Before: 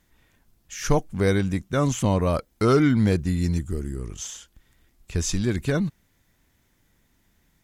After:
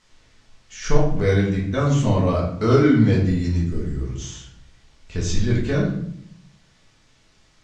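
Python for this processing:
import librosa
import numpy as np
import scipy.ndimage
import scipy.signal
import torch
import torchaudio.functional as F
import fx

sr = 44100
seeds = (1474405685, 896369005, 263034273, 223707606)

p1 = fx.quant_dither(x, sr, seeds[0], bits=8, dither='triangular')
p2 = x + F.gain(torch.from_numpy(p1), -6.0).numpy()
p3 = scipy.signal.sosfilt(scipy.signal.butter(4, 6500.0, 'lowpass', fs=sr, output='sos'), p2)
p4 = fx.room_shoebox(p3, sr, seeds[1], volume_m3=130.0, walls='mixed', distance_m=1.5)
y = F.gain(torch.from_numpy(p4), -7.5).numpy()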